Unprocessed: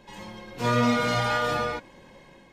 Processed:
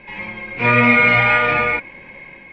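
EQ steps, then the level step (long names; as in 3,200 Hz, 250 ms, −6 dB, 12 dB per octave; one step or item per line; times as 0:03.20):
low-pass with resonance 2,300 Hz, resonance Q 14
high-frequency loss of the air 100 metres
+6.0 dB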